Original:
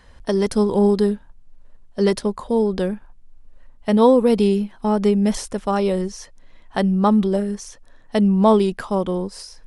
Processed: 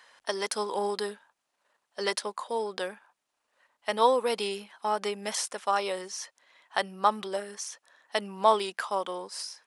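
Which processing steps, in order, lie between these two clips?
high-pass filter 880 Hz 12 dB per octave

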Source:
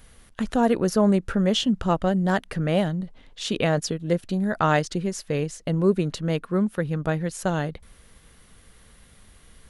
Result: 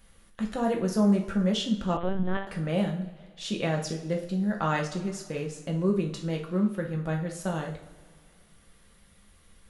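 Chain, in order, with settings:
coupled-rooms reverb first 0.45 s, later 2.1 s, from −18 dB, DRR 0.5 dB
0:01.97–0:02.47: linear-prediction vocoder at 8 kHz pitch kept
level −8.5 dB

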